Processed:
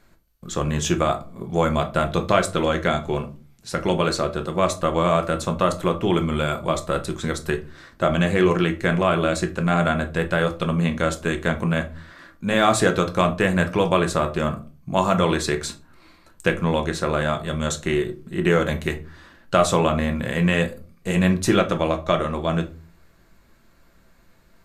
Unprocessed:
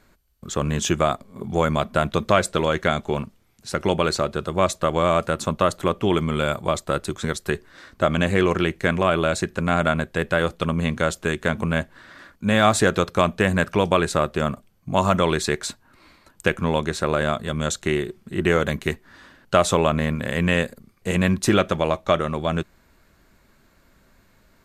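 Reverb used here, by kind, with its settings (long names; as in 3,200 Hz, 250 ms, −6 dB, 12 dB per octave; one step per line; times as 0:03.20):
rectangular room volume 190 cubic metres, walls furnished, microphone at 0.81 metres
level −1.5 dB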